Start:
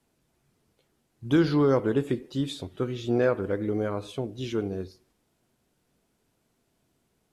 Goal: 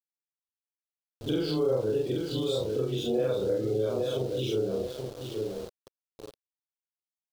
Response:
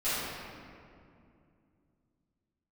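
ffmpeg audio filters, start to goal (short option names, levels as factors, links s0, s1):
-filter_complex "[0:a]afftfilt=real='re':imag='-im':win_size=4096:overlap=0.75,highshelf=f=7000:g=-7.5,aecho=1:1:826|1652|2478|3304:0.376|0.117|0.0361|0.0112,aexciter=amount=1.8:drive=5.8:freq=2300,asplit=2[s0][s1];[s1]alimiter=level_in=1.06:limit=0.0631:level=0:latency=1:release=125,volume=0.944,volume=1.19[s2];[s0][s2]amix=inputs=2:normalize=0,agate=range=0.447:threshold=0.00158:ratio=16:detection=peak,asplit=2[s3][s4];[s4]adelay=30,volume=0.316[s5];[s3][s5]amix=inputs=2:normalize=0,afftdn=nr=27:nf=-41,aeval=exprs='val(0)*gte(abs(val(0)),0.0119)':c=same,equalizer=f=250:t=o:w=1:g=-7,equalizer=f=500:t=o:w=1:g=8,equalizer=f=1000:t=o:w=1:g=-6,equalizer=f=2000:t=o:w=1:g=-10,equalizer=f=4000:t=o:w=1:g=6,acompressor=threshold=0.0398:ratio=2"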